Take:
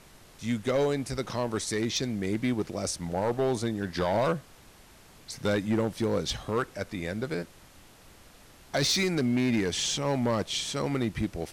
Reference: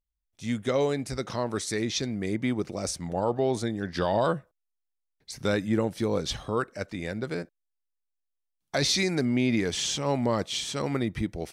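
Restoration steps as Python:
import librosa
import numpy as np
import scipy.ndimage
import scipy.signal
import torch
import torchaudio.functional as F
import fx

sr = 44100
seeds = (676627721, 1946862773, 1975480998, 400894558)

y = fx.fix_declip(x, sr, threshold_db=-20.5)
y = fx.noise_reduce(y, sr, print_start_s=4.55, print_end_s=5.05, reduce_db=28.0)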